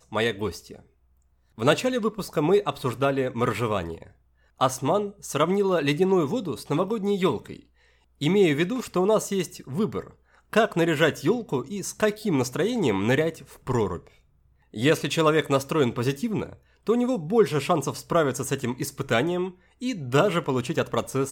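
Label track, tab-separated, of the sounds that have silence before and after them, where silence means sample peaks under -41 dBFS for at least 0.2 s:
1.580000	4.070000	sound
4.600000	7.600000	sound
8.210000	10.100000	sound
10.530000	14.070000	sound
14.740000	16.550000	sound
16.870000	19.510000	sound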